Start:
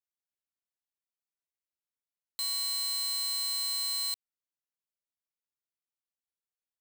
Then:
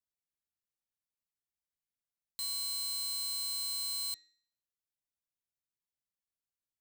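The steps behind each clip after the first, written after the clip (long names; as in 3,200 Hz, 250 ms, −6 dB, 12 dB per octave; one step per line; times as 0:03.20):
bass and treble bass +11 dB, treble +4 dB
hum removal 315 Hz, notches 25
level −7 dB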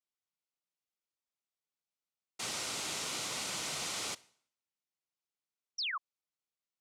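cochlear-implant simulation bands 1
sound drawn into the spectrogram fall, 0:05.78–0:05.98, 1,000–6,000 Hz −35 dBFS
notch filter 1,700 Hz, Q 7.3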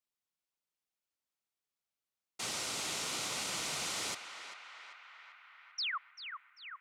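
feedback echo with a band-pass in the loop 392 ms, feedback 77%, band-pass 1,600 Hz, level −7 dB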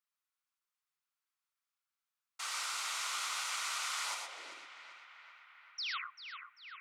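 high-pass filter sweep 1,200 Hz → 97 Hz, 0:04.02–0:04.85
reverb whose tail is shaped and stops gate 140 ms rising, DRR 3 dB
level −3.5 dB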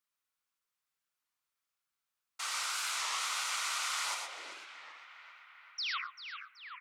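single-tap delay 139 ms −23.5 dB
wow of a warped record 33 1/3 rpm, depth 160 cents
level +2.5 dB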